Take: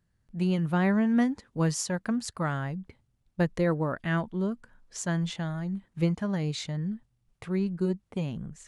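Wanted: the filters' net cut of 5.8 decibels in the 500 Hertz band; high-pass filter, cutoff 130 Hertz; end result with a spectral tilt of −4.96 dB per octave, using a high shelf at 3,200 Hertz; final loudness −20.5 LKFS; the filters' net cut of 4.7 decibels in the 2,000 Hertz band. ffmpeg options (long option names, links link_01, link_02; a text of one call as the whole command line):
ffmpeg -i in.wav -af "highpass=130,equalizer=frequency=500:width_type=o:gain=-7.5,equalizer=frequency=2000:width_type=o:gain=-7.5,highshelf=frequency=3200:gain=6.5,volume=11dB" out.wav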